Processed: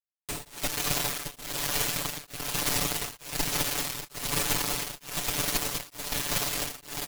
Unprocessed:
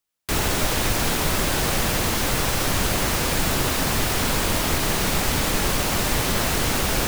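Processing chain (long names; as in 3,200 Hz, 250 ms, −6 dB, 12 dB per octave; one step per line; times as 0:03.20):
parametric band 1,500 Hz −12 dB 0.22 octaves
tuned comb filter 350 Hz, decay 0.42 s, harmonics all, mix 60%
on a send: delay with a high-pass on its return 101 ms, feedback 84%, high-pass 2,100 Hz, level −9 dB
on the sum: automatic gain control gain up to 11 dB
log-companded quantiser 2 bits
parametric band 8,500 Hz +6.5 dB 0.21 octaves
harmonic generator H 2 −10 dB, 7 −12 dB, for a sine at 3 dBFS
brickwall limiter −16.5 dBFS, peak gain reduction 23 dB
comb filter 6.9 ms, depth 90%
tremolo along a rectified sine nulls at 1.1 Hz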